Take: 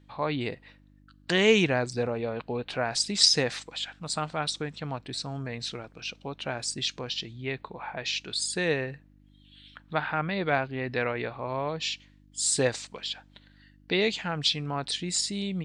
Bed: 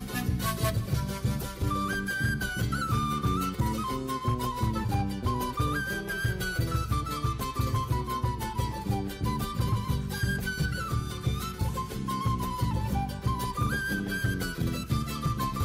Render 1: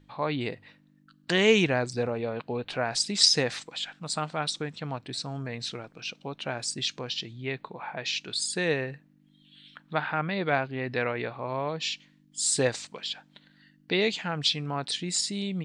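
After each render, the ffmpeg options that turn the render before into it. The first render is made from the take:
-af "bandreject=f=50:t=h:w=4,bandreject=f=100:t=h:w=4"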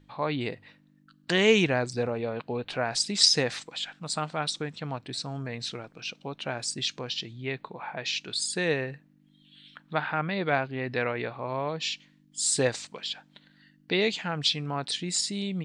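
-af anull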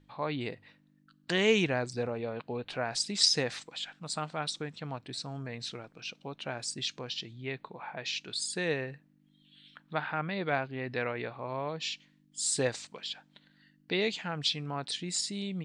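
-af "volume=-4.5dB"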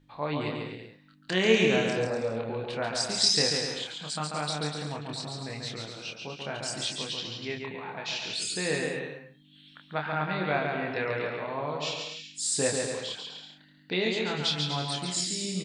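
-filter_complex "[0:a]asplit=2[a][b];[b]adelay=27,volume=-4dB[c];[a][c]amix=inputs=2:normalize=0,aecho=1:1:140|245|323.8|382.8|427.1:0.631|0.398|0.251|0.158|0.1"

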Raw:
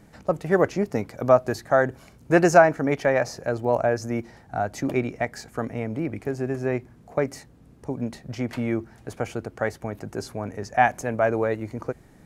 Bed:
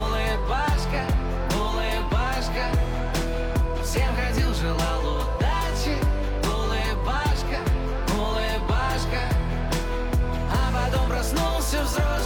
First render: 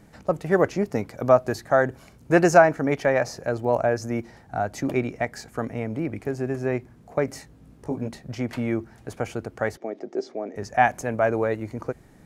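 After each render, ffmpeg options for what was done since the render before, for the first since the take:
-filter_complex "[0:a]asettb=1/sr,asplit=3[a][b][c];[a]atrim=end=7.264[d];[b]atrim=start=7.26:end=8.08,asetpts=PTS-STARTPTS,afade=t=in:d=0.004:c=qsin,afade=t=out:st=0.816:d=0.004:c=qsin,asplit=2[e][f];[f]adelay=19,volume=-4.5dB[g];[e][g]amix=inputs=2:normalize=0,atrim=end_sample=36162[h];[c]atrim=start=8.076[i];[d][h]acrossfade=d=0.004:c1=hsin:c2=qsin[j];[j][i]acrossfade=d=0.004:c1=qsin:c2=hsin,asettb=1/sr,asplit=3[k][l][m];[k]atrim=end=9.774[n];[l]atrim=start=9.77:end=10.56,asetpts=PTS-STARTPTS,afade=t=in:d=0.004:c=qsin,afade=t=out:st=0.786:d=0.004:c=qsin,highpass=f=250:w=0.5412,highpass=f=250:w=1.3066,equalizer=f=370:t=q:w=4:g=7,equalizer=f=650:t=q:w=4:g=4,equalizer=f=1k:t=q:w=4:g=-10,equalizer=f=1.5k:t=q:w=4:g=-10,equalizer=f=2.7k:t=q:w=4:g=-9,equalizer=f=4.2k:t=q:w=4:g=-6,lowpass=f=5.2k:w=0.5412,lowpass=f=5.2k:w=1.3066[o];[m]atrim=start=10.556[p];[n][o]acrossfade=d=0.004:c1=hsin:c2=qsin[q];[q][p]acrossfade=d=0.004:c1=qsin:c2=hsin"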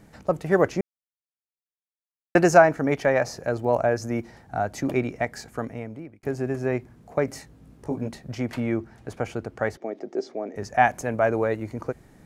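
-filter_complex "[0:a]asettb=1/sr,asplit=3[a][b][c];[a]atrim=end=8.604[d];[b]atrim=start=8.6:end=9.82,asetpts=PTS-STARTPTS,afade=t=in:d=0.004:c=qsin,afade=t=out:st=1.216:d=0.004:c=qsin,highshelf=f=7.8k:g=-7.5[e];[c]atrim=start=9.816[f];[d][e]acrossfade=d=0.004:c1=hsin:c2=qsin[g];[g][f]acrossfade=d=0.004:c1=qsin:c2=hsin,asplit=4[h][i][j][k];[h]atrim=end=0.81,asetpts=PTS-STARTPTS,afade=t=out:st=0.806:d=0.004:c=hsin[l];[i]atrim=start=0.81:end=2.35,asetpts=PTS-STARTPTS,volume=0[m];[j]atrim=start=2.35:end=6.23,asetpts=PTS-STARTPTS,afade=t=in:d=0.004:c=hsin,afade=t=out:st=3.12:d=0.76[n];[k]atrim=start=6.23,asetpts=PTS-STARTPTS,afade=t=in:d=0.004:c=hsin[o];[l][m][n][o]concat=n=4:v=0:a=1"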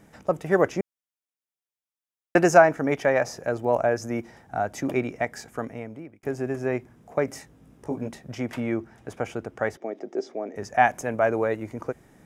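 -af "lowshelf=f=120:g=-8,bandreject=f=4.3k:w=6.6"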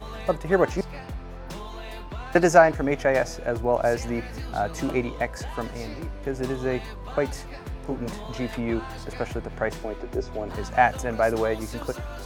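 -filter_complex "[1:a]volume=-12.5dB[a];[0:a][a]amix=inputs=2:normalize=0"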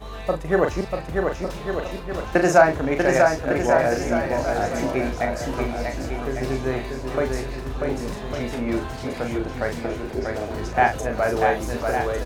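-filter_complex "[0:a]asplit=2[a][b];[b]adelay=38,volume=-6dB[c];[a][c]amix=inputs=2:normalize=0,aecho=1:1:640|1152|1562|1889|2151:0.631|0.398|0.251|0.158|0.1"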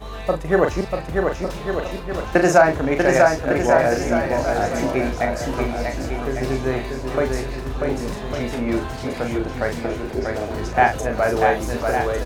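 -af "volume=2.5dB,alimiter=limit=-2dB:level=0:latency=1"

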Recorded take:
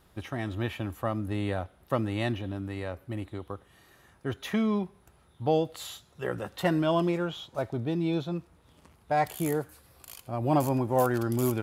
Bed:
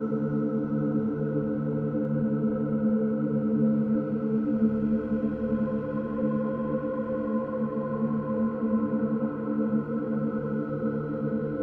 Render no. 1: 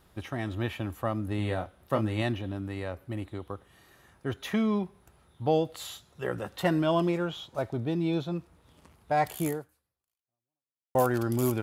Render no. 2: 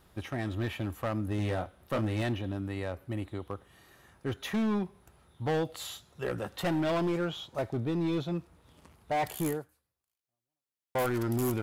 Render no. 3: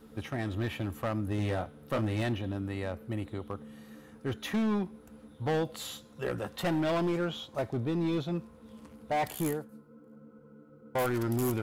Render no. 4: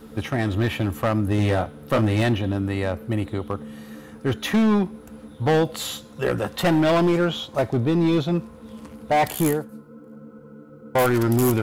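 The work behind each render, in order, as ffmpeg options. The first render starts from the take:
-filter_complex "[0:a]asettb=1/sr,asplit=3[a][b][c];[a]atrim=end=1.364[d];[b]atrim=start=1.36:end=2.22,asetpts=PTS-STARTPTS,afade=t=in:d=0.004:c=qsin,afade=t=out:st=0.856:d=0.004:c=qsin,asplit=2[e][f];[f]adelay=28,volume=-7.5dB[g];[e][g]amix=inputs=2:normalize=0,atrim=end_sample=37926[h];[c]atrim=start=2.216[i];[d][h]acrossfade=d=0.004:c1=hsin:c2=qsin[j];[j][i]acrossfade=d=0.004:c1=qsin:c2=hsin,asplit=2[k][l];[k]atrim=end=10.95,asetpts=PTS-STARTPTS,afade=t=out:st=9.47:d=1.48:c=exp[m];[l]atrim=start=10.95,asetpts=PTS-STARTPTS,afade=t=in:d=0.004:c=hsin[n];[m][n]concat=n=2:v=0:a=1"
-af "volume=25.5dB,asoftclip=hard,volume=-25.5dB"
-filter_complex "[1:a]volume=-25dB[a];[0:a][a]amix=inputs=2:normalize=0"
-af "volume=10.5dB"

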